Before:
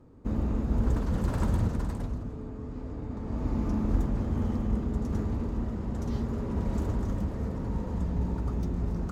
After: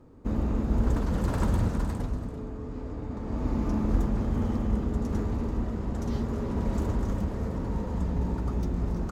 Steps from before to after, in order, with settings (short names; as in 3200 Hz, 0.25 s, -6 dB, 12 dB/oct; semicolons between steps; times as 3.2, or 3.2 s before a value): bell 110 Hz -3 dB 2.3 oct; on a send: echo 0.337 s -13 dB; on the sum: gain +3 dB